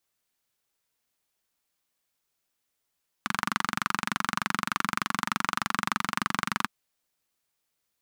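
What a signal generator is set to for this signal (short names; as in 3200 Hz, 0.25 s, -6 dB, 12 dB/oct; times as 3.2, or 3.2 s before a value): single-cylinder engine model, steady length 3.42 s, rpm 2800, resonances 210/1200 Hz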